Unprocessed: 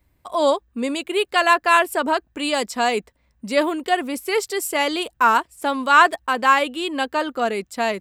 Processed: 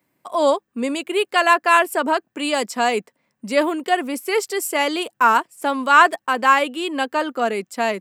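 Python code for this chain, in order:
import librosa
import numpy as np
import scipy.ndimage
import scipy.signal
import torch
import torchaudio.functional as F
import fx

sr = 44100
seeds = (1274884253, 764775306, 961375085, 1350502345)

y = scipy.signal.sosfilt(scipy.signal.butter(4, 160.0, 'highpass', fs=sr, output='sos'), x)
y = fx.peak_eq(y, sr, hz=3800.0, db=-4.5, octaves=0.39)
y = y * librosa.db_to_amplitude(1.0)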